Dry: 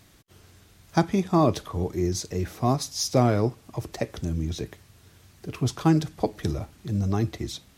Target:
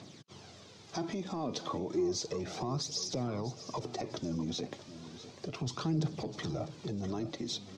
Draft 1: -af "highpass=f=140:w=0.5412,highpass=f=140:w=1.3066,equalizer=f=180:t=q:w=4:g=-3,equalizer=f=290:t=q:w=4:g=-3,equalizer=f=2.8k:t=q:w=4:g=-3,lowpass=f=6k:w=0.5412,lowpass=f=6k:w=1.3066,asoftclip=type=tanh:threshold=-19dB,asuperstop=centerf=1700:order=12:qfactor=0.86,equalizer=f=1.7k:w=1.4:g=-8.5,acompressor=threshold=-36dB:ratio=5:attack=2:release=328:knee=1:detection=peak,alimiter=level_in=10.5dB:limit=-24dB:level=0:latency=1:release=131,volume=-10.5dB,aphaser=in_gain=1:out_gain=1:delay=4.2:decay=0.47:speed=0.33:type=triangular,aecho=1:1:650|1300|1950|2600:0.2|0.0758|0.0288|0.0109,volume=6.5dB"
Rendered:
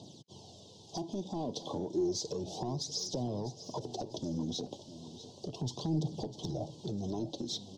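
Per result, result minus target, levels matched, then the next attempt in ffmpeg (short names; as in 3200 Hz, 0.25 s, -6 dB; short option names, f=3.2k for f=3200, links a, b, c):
2000 Hz band -18.0 dB; compressor: peak gain reduction +14.5 dB; soft clip: distortion +14 dB
-af "highpass=f=140:w=0.5412,highpass=f=140:w=1.3066,equalizer=f=180:t=q:w=4:g=-3,equalizer=f=290:t=q:w=4:g=-3,equalizer=f=2.8k:t=q:w=4:g=-3,lowpass=f=6k:w=0.5412,lowpass=f=6k:w=1.3066,asoftclip=type=tanh:threshold=-19dB,equalizer=f=1.7k:w=1.4:g=-8.5,acompressor=threshold=-36dB:ratio=5:attack=2:release=328:knee=1:detection=peak,alimiter=level_in=10.5dB:limit=-24dB:level=0:latency=1:release=131,volume=-10.5dB,aphaser=in_gain=1:out_gain=1:delay=4.2:decay=0.47:speed=0.33:type=triangular,aecho=1:1:650|1300|1950|2600:0.2|0.0758|0.0288|0.0109,volume=6.5dB"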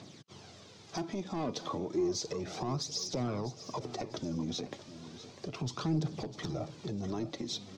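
compressor: peak gain reduction +13.5 dB; soft clip: distortion +14 dB
-af "highpass=f=140:w=0.5412,highpass=f=140:w=1.3066,equalizer=f=180:t=q:w=4:g=-3,equalizer=f=290:t=q:w=4:g=-3,equalizer=f=2.8k:t=q:w=4:g=-3,lowpass=f=6k:w=0.5412,lowpass=f=6k:w=1.3066,asoftclip=type=tanh:threshold=-19dB,equalizer=f=1.7k:w=1.4:g=-8.5,alimiter=level_in=10.5dB:limit=-24dB:level=0:latency=1:release=131,volume=-10.5dB,aphaser=in_gain=1:out_gain=1:delay=4.2:decay=0.47:speed=0.33:type=triangular,aecho=1:1:650|1300|1950|2600:0.2|0.0758|0.0288|0.0109,volume=6.5dB"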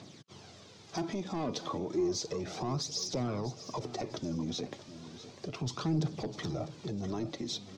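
soft clip: distortion +14 dB
-af "highpass=f=140:w=0.5412,highpass=f=140:w=1.3066,equalizer=f=180:t=q:w=4:g=-3,equalizer=f=290:t=q:w=4:g=-3,equalizer=f=2.8k:t=q:w=4:g=-3,lowpass=f=6k:w=0.5412,lowpass=f=6k:w=1.3066,asoftclip=type=tanh:threshold=-9dB,equalizer=f=1.7k:w=1.4:g=-8.5,alimiter=level_in=10.5dB:limit=-24dB:level=0:latency=1:release=131,volume=-10.5dB,aphaser=in_gain=1:out_gain=1:delay=4.2:decay=0.47:speed=0.33:type=triangular,aecho=1:1:650|1300|1950|2600:0.2|0.0758|0.0288|0.0109,volume=6.5dB"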